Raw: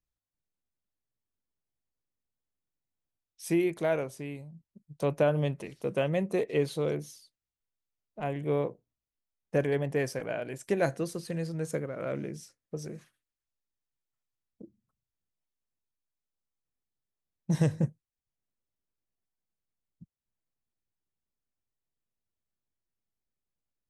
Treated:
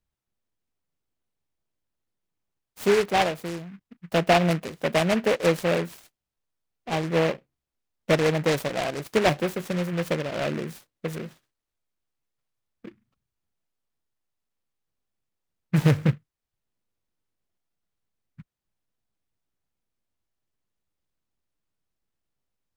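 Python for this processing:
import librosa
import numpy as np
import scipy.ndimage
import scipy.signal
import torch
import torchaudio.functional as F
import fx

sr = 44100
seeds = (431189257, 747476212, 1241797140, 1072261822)

p1 = fx.speed_glide(x, sr, from_pct=125, to_pct=85)
p2 = fx.sample_hold(p1, sr, seeds[0], rate_hz=11000.0, jitter_pct=0)
p3 = p1 + (p2 * librosa.db_to_amplitude(-12.0))
p4 = fx.noise_mod_delay(p3, sr, seeds[1], noise_hz=1600.0, depth_ms=0.11)
y = p4 * librosa.db_to_amplitude(4.5)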